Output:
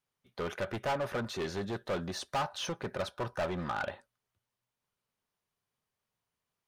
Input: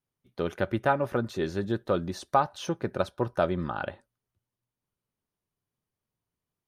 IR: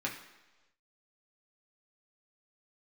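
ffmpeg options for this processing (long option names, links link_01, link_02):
-filter_complex "[0:a]volume=27dB,asoftclip=hard,volume=-27dB,asplit=2[link_01][link_02];[link_02]highpass=frequency=720:poles=1,volume=9dB,asoftclip=type=tanh:threshold=-27dB[link_03];[link_01][link_03]amix=inputs=2:normalize=0,lowpass=frequency=5900:poles=1,volume=-6dB,equalizer=frequency=320:width_type=o:width=0.36:gain=-6"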